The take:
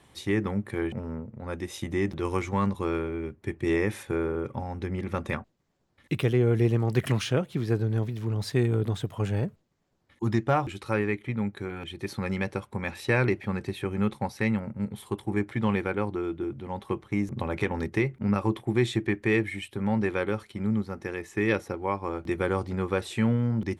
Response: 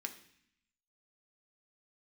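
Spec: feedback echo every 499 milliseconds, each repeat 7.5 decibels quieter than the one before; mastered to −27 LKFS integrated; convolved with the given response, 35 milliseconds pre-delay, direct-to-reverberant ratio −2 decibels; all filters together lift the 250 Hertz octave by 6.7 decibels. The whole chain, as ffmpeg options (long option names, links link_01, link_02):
-filter_complex "[0:a]equalizer=frequency=250:width_type=o:gain=9,aecho=1:1:499|998|1497|1996|2495:0.422|0.177|0.0744|0.0312|0.0131,asplit=2[link_01][link_02];[1:a]atrim=start_sample=2205,adelay=35[link_03];[link_02][link_03]afir=irnorm=-1:irlink=0,volume=3dB[link_04];[link_01][link_04]amix=inputs=2:normalize=0,volume=-6.5dB"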